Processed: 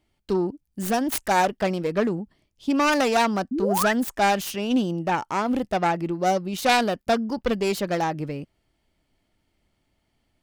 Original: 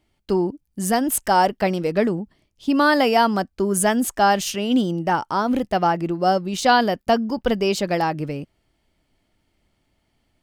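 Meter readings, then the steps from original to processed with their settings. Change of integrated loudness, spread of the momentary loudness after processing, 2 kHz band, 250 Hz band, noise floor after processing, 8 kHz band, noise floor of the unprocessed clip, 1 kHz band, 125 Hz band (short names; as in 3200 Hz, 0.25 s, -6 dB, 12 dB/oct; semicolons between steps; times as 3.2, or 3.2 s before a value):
-3.5 dB, 7 LU, -2.5 dB, -3.0 dB, -73 dBFS, -5.5 dB, -70 dBFS, -4.0 dB, -3.0 dB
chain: self-modulated delay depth 0.18 ms; painted sound rise, 3.51–3.93, 230–2100 Hz -22 dBFS; gain -3 dB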